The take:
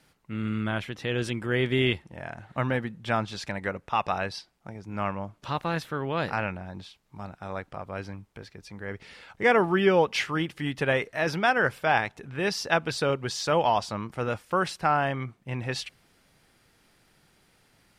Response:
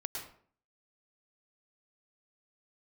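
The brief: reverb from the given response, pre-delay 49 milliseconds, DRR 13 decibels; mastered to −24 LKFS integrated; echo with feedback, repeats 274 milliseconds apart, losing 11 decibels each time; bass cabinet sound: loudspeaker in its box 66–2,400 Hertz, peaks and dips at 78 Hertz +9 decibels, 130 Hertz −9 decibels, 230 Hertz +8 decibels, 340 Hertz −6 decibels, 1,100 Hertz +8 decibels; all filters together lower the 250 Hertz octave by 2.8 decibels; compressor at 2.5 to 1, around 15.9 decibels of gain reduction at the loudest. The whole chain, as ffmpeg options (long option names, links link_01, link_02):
-filter_complex "[0:a]equalizer=frequency=250:width_type=o:gain=-6.5,acompressor=threshold=-43dB:ratio=2.5,aecho=1:1:274|548|822:0.282|0.0789|0.0221,asplit=2[link_01][link_02];[1:a]atrim=start_sample=2205,adelay=49[link_03];[link_02][link_03]afir=irnorm=-1:irlink=0,volume=-13.5dB[link_04];[link_01][link_04]amix=inputs=2:normalize=0,highpass=frequency=66:width=0.5412,highpass=frequency=66:width=1.3066,equalizer=frequency=78:width_type=q:width=4:gain=9,equalizer=frequency=130:width_type=q:width=4:gain=-9,equalizer=frequency=230:width_type=q:width=4:gain=8,equalizer=frequency=340:width_type=q:width=4:gain=-6,equalizer=frequency=1100:width_type=q:width=4:gain=8,lowpass=frequency=2400:width=0.5412,lowpass=frequency=2400:width=1.3066,volume=17dB"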